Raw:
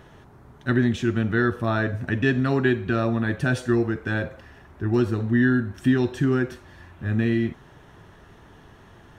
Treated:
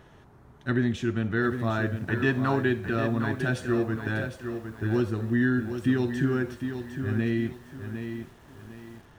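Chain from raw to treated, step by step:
0:02.09–0:02.56: parametric band 980 Hz +11.5 dB 0.77 octaves
feedback echo at a low word length 757 ms, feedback 35%, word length 8 bits, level −8 dB
level −4.5 dB

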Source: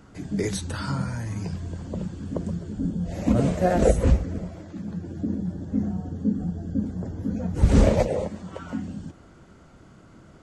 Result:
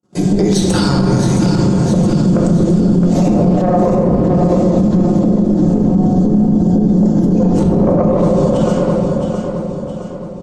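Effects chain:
treble cut that deepens with the level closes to 870 Hz, closed at −14.5 dBFS
high-pass filter 180 Hz 12 dB per octave, from 0:08.39 1,200 Hz
noise gate −49 dBFS, range −53 dB
parametric band 1,800 Hz −15 dB 1.7 octaves
comb filter 5.6 ms, depth 57%
downward compressor, threshold −29 dBFS, peak gain reduction 13 dB
tube saturation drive 24 dB, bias 0.65
repeating echo 666 ms, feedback 47%, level −8.5 dB
convolution reverb RT60 2.6 s, pre-delay 7 ms, DRR 0.5 dB
boost into a limiter +30 dB
level −3.5 dB

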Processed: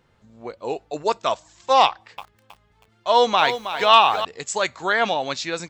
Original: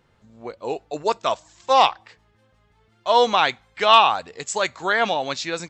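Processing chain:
0:01.86–0:04.25: feedback echo at a low word length 319 ms, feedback 35%, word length 7 bits, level −10 dB

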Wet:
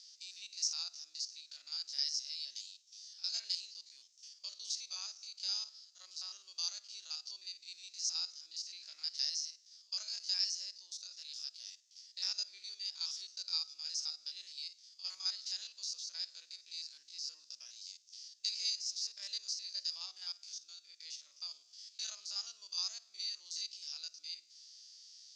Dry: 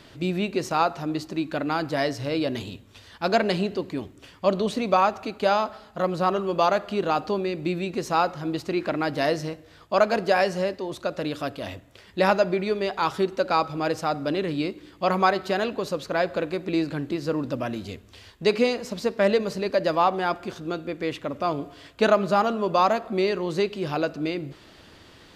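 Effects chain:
spectrum averaged block by block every 50 ms
flat-topped band-pass 5,600 Hz, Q 3.3
level +9.5 dB

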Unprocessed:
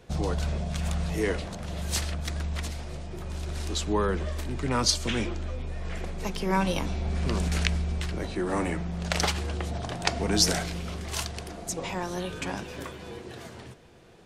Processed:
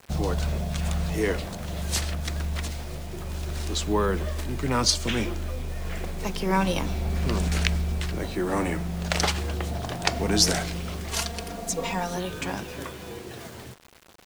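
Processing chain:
0:11.11–0:12.17: comb filter 4.3 ms, depth 75%
bit reduction 8 bits
level +2 dB

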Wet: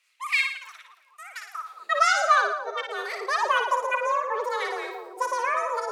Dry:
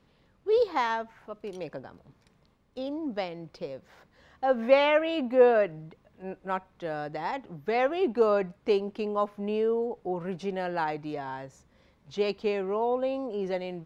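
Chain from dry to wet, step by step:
high-pass filter sweep 960 Hz → 150 Hz, 0:03.40–0:04.34
harmonic and percussive parts rebalanced percussive −6 dB
frequency shifter +18 Hz
on a send: echo with a time of its own for lows and highs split 450 Hz, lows 523 ms, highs 133 ms, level −5 dB
on the sum: wrong playback speed 33 rpm record played at 78 rpm

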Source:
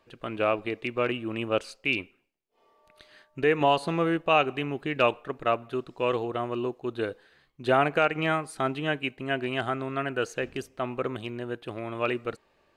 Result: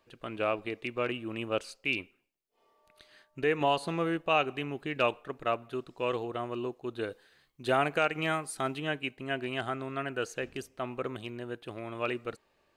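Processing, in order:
high-shelf EQ 4,800 Hz +5.5 dB, from 0:07.10 +11.5 dB, from 0:08.80 +5.5 dB
level −5 dB

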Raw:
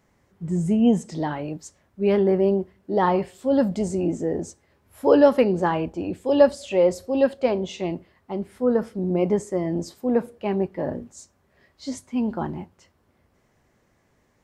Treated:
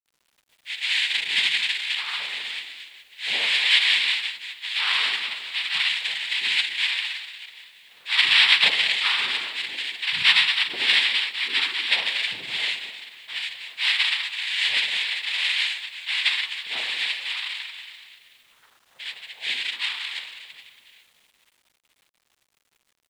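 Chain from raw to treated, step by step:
convolution reverb RT60 1.1 s, pre-delay 6 ms, DRR −1 dB
phase-vocoder stretch with locked phases 1.6×
parametric band 2,100 Hz +5 dB 1.3 octaves
voice inversion scrambler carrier 3,000 Hz
cochlear-implant simulation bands 6
low-shelf EQ 140 Hz −12 dB
bit reduction 9 bits
level −6 dB

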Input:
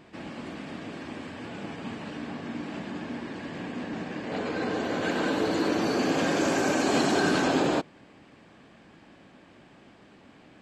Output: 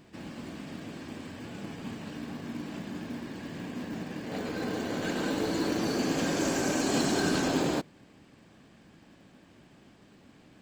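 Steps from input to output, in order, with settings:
bass and treble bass +4 dB, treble +8 dB
in parallel at −10 dB: sample-rate reduction 1,300 Hz
on the sum: level −6 dB

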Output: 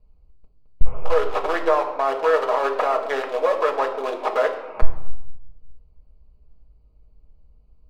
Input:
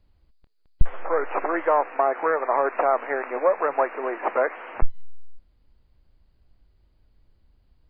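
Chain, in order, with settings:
adaptive Wiener filter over 25 samples
high-shelf EQ 2,200 Hz +8.5 dB
brickwall limiter −13 dBFS, peak gain reduction 8.5 dB
convolution reverb RT60 0.90 s, pre-delay 4 ms, DRR 0.5 dB

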